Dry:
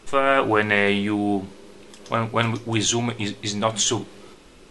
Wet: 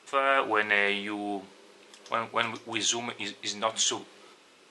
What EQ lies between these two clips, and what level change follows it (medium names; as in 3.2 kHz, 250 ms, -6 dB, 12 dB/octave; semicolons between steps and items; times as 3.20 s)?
frequency weighting A; -5.0 dB